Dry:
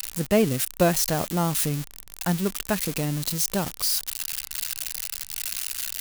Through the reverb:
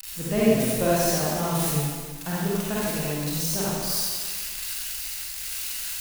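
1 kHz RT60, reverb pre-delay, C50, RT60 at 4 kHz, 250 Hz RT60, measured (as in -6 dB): 1.7 s, 37 ms, -6.0 dB, 1.6 s, 1.6 s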